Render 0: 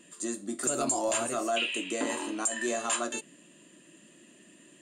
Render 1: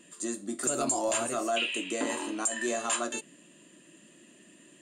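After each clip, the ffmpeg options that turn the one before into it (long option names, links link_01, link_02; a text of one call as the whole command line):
ffmpeg -i in.wav -af anull out.wav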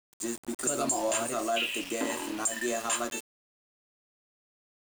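ffmpeg -i in.wav -af "aeval=exprs='val(0)*gte(abs(val(0)),0.0141)':channel_layout=same" out.wav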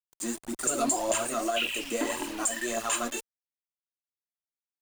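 ffmpeg -i in.wav -af "asubboost=boost=3:cutoff=52,aphaser=in_gain=1:out_gain=1:delay=4.4:decay=0.5:speed=1.8:type=triangular,anlmdn=0.000631" out.wav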